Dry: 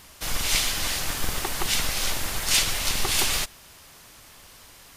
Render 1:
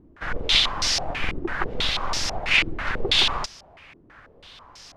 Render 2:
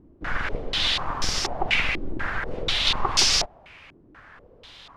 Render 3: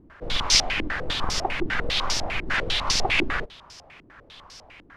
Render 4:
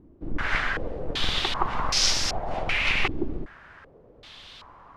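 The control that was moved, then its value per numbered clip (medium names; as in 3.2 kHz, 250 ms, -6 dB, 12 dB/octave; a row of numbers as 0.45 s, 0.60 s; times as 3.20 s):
step-sequenced low-pass, rate: 6.1 Hz, 4.1 Hz, 10 Hz, 2.6 Hz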